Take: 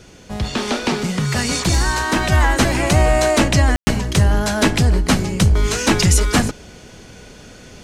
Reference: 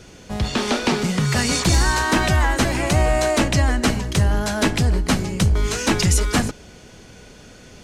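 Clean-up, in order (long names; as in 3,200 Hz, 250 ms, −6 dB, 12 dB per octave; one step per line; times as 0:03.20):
ambience match 0:03.76–0:03.87
level 0 dB, from 0:02.32 −3.5 dB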